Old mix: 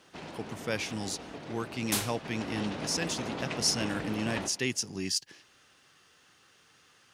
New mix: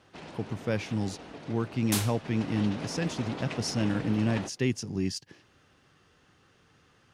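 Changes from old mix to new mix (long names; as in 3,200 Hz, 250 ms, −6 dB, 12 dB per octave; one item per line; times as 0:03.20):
speech: add spectral tilt −3 dB per octave
reverb: off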